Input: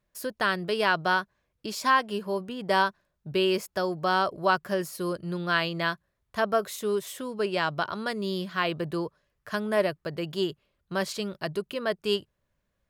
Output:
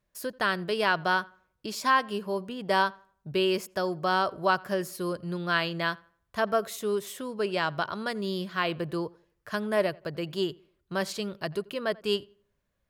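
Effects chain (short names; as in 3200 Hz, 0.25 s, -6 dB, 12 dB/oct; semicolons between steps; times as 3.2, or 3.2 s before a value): darkening echo 87 ms, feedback 33%, low-pass 2700 Hz, level -23.5 dB; gain -1 dB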